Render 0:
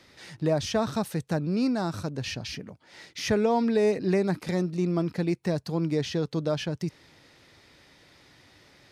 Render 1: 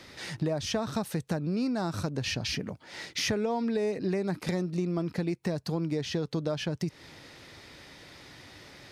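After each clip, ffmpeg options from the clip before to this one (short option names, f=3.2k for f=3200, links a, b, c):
-af "acompressor=threshold=-34dB:ratio=6,volume=6.5dB"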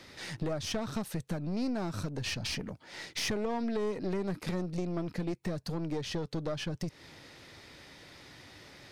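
-af "aeval=exprs='(tanh(20*val(0)+0.55)-tanh(0.55))/20':c=same"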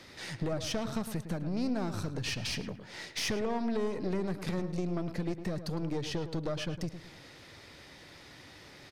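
-filter_complex "[0:a]asplit=2[a][b];[b]adelay=108,lowpass=f=2.4k:p=1,volume=-10dB,asplit=2[c][d];[d]adelay=108,lowpass=f=2.4k:p=1,volume=0.38,asplit=2[e][f];[f]adelay=108,lowpass=f=2.4k:p=1,volume=0.38,asplit=2[g][h];[h]adelay=108,lowpass=f=2.4k:p=1,volume=0.38[i];[a][c][e][g][i]amix=inputs=5:normalize=0"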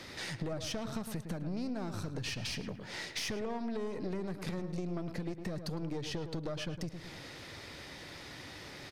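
-af "acompressor=threshold=-43dB:ratio=2.5,volume=4.5dB"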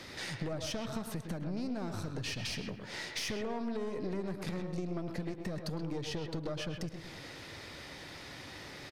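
-filter_complex "[0:a]asplit=2[a][b];[b]adelay=130,highpass=300,lowpass=3.4k,asoftclip=type=hard:threshold=-33.5dB,volume=-7dB[c];[a][c]amix=inputs=2:normalize=0"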